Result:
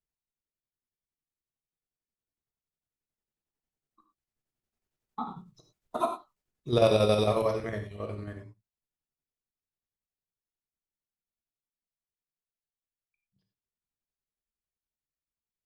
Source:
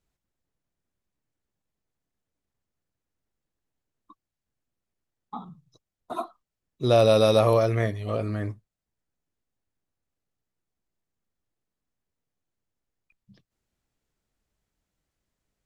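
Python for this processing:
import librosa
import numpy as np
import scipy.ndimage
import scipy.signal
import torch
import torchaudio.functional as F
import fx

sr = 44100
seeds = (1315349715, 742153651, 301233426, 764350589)

y = fx.doppler_pass(x, sr, speed_mps=10, closest_m=5.5, pass_at_s=5.73)
y = fx.chopper(y, sr, hz=11.0, depth_pct=60, duty_pct=60)
y = fx.rev_gated(y, sr, seeds[0], gate_ms=130, shape='flat', drr_db=4.0)
y = F.gain(torch.from_numpy(y), 4.5).numpy()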